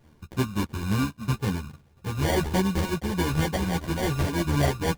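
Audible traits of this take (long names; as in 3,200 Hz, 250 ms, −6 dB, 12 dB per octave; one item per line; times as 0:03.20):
a buzz of ramps at a fixed pitch in blocks of 32 samples
phaser sweep stages 8, 3.5 Hz, lowest notch 520–4,400 Hz
aliases and images of a low sample rate 1,300 Hz, jitter 0%
a shimmering, thickened sound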